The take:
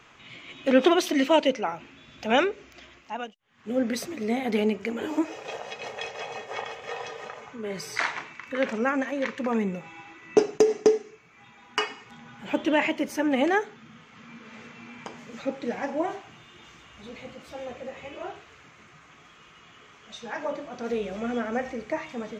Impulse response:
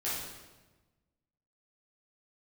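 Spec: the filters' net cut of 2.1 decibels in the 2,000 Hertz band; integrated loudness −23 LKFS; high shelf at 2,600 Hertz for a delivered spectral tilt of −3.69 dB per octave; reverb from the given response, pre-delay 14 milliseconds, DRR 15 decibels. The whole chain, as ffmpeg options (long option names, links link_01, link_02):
-filter_complex "[0:a]equalizer=frequency=2000:width_type=o:gain=-5,highshelf=frequency=2600:gain=5.5,asplit=2[link_01][link_02];[1:a]atrim=start_sample=2205,adelay=14[link_03];[link_02][link_03]afir=irnorm=-1:irlink=0,volume=-20.5dB[link_04];[link_01][link_04]amix=inputs=2:normalize=0,volume=4.5dB"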